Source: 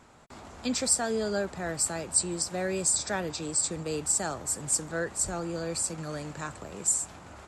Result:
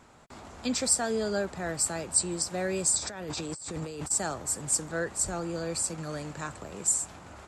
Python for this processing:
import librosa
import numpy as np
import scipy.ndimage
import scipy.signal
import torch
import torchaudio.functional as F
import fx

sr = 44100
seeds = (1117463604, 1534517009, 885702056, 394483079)

y = fx.over_compress(x, sr, threshold_db=-38.0, ratio=-1.0, at=(2.98, 4.1), fade=0.02)